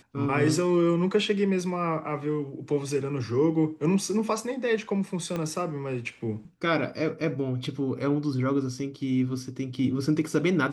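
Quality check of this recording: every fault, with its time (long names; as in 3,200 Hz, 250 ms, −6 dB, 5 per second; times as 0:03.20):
0:05.36: click −18 dBFS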